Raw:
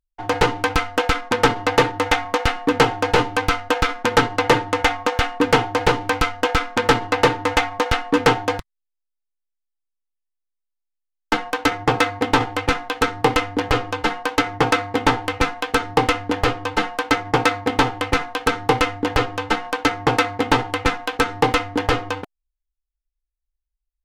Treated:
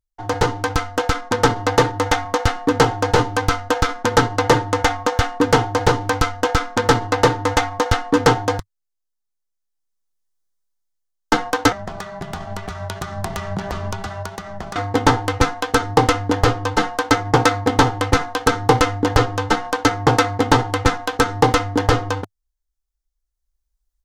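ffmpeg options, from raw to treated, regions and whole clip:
-filter_complex "[0:a]asettb=1/sr,asplit=3[a][b][c];[a]atrim=end=11.724[d];[b]atrim=start=11.72:end=14.76,asetpts=PTS-STARTPTS,afade=t=in:d=0.004:c=qsin,afade=t=out:st=3.036:d=0.004:c=qsin,equalizer=f=450:t=o:w=0.41:g=-11,acompressor=threshold=-29dB:ratio=20:attack=3.2:release=140:knee=1:detection=peak,afreqshift=-100[e];[c]atrim=start=14.756[f];[d][e]acrossfade=d=0.004:c1=hsin:c2=qsin[g];[g][f]acrossfade=d=0.004:c1=qsin:c2=hsin,equalizer=f=100:t=o:w=0.67:g=7,equalizer=f=2.5k:t=o:w=0.67:g=-8,equalizer=f=6.3k:t=o:w=0.67:g=4,dynaudnorm=f=800:g=3:m=11.5dB,volume=-1dB"

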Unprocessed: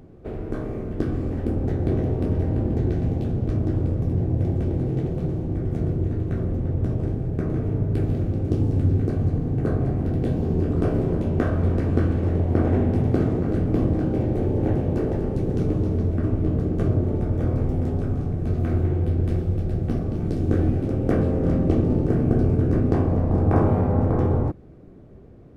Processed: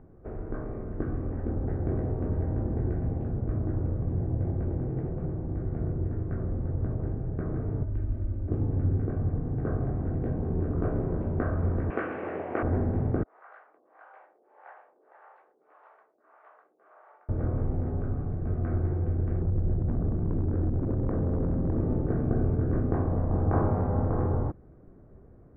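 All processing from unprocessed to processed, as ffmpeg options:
-filter_complex "[0:a]asettb=1/sr,asplit=3[a][b][c];[a]atrim=end=7.834[d];[b]atrim=start=7.83:end=8.48,asetpts=PTS-STARTPTS,afade=t=in:d=0.004:c=qsin,afade=t=out:st=0.646:d=0.004:c=qsin,aecho=1:1:3.3:0.75,atrim=end_sample=28665,acrossover=split=140|3000[e][f][g];[f]acompressor=threshold=-40dB:ratio=2.5:attack=3.2:release=140:knee=2.83:detection=peak[h];[e][h][g]amix=inputs=3:normalize=0[i];[c]atrim=start=8.476[j];[d][i]acrossfade=d=0.004:c1=hsin:c2=qsin[k];[k][j]acrossfade=d=0.004:c1=qsin:c2=hsin,asettb=1/sr,asplit=3[l][m][n];[l]atrim=end=11.904[o];[m]atrim=start=11.9:end=12.63,asetpts=PTS-STARTPTS,afade=t=in:d=0.004:c=qsin,afade=t=out:st=0.726:d=0.004:c=qsin,highpass=450,equalizer=f=2.6k:t=o:w=0.91:g=15,acontrast=30[p];[n]atrim=start=12.626[q];[o][p]acrossfade=d=0.004:c1=hsin:c2=qsin[r];[r][q]acrossfade=d=0.004:c1=qsin:c2=hsin,asettb=1/sr,asplit=3[s][t][u];[s]atrim=end=13.234[v];[t]atrim=start=13.23:end=17.29,asetpts=PTS-STARTPTS,afade=t=in:d=0.004:c=qsin,afade=t=out:st=4.056:d=0.004:c=qsin,highpass=f=880:w=0.5412,highpass=f=880:w=1.3066,acrossover=split=420[w][x];[w]aeval=exprs='val(0)*(1-1/2+1/2*cos(2*PI*1.7*n/s))':c=same[y];[x]aeval=exprs='val(0)*(1-1/2-1/2*cos(2*PI*1.7*n/s))':c=same[z];[y][z]amix=inputs=2:normalize=0[aa];[u]atrim=start=17.286[ab];[v][aa]acrossfade=d=0.004:c1=hsin:c2=qsin[ac];[ac][ab]acrossfade=d=0.004:c1=qsin:c2=hsin,asettb=1/sr,asplit=3[ad][ae][af];[ad]atrim=end=19.414[ag];[ae]atrim=start=19.41:end=21.8,asetpts=PTS-STARTPTS,afade=t=in:d=0.004:c=qsin,afade=t=out:st=2.386:d=0.004:c=qsin,tiltshelf=f=830:g=6.5,acompressor=threshold=-16dB:ratio=6:attack=3.2:release=140:knee=1:detection=peak,asoftclip=type=hard:threshold=-15dB[ah];[af]atrim=start=21.796[ai];[ag][ah]acrossfade=d=0.004:c1=hsin:c2=qsin[aj];[aj][ai]acrossfade=d=0.004:c1=qsin:c2=hsin,lowpass=f=1.6k:w=0.5412,lowpass=f=1.6k:w=1.3066,equalizer=f=240:w=0.3:g=-7,volume=-1dB"

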